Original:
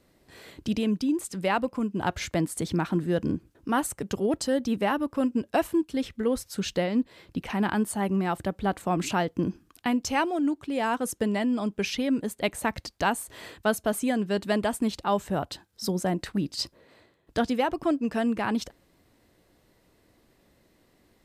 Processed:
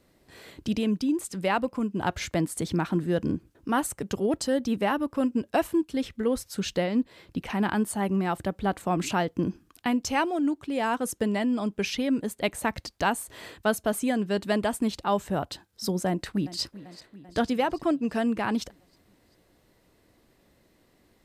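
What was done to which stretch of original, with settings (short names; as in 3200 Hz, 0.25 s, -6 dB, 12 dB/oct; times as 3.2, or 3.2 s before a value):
16.07–16.61 echo throw 0.39 s, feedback 65%, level -16.5 dB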